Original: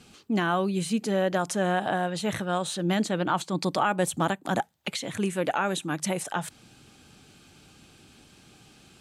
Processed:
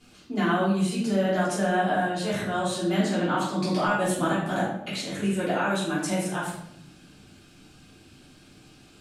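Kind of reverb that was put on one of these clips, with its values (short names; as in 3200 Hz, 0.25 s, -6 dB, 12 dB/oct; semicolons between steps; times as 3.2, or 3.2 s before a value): shoebox room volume 190 m³, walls mixed, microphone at 3.2 m; gain -9.5 dB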